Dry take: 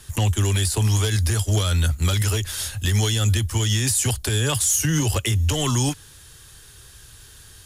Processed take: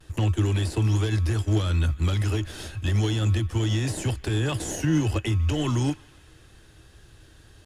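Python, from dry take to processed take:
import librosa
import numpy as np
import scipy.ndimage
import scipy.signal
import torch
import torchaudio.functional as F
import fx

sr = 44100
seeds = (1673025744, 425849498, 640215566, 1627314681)

p1 = fx.sample_hold(x, sr, seeds[0], rate_hz=1200.0, jitter_pct=0)
p2 = x + (p1 * librosa.db_to_amplitude(-10.5))
p3 = fx.high_shelf(p2, sr, hz=4500.0, db=-10.0)
p4 = fx.small_body(p3, sr, hz=(320.0, 2600.0), ring_ms=100, db=11)
p5 = p4 + fx.echo_banded(p4, sr, ms=149, feedback_pct=79, hz=1900.0, wet_db=-22, dry=0)
p6 = fx.vibrato(p5, sr, rate_hz=0.32, depth_cents=18.0)
p7 = fx.high_shelf(p6, sr, hz=11000.0, db=-10.0)
y = p7 * librosa.db_to_amplitude(-5.0)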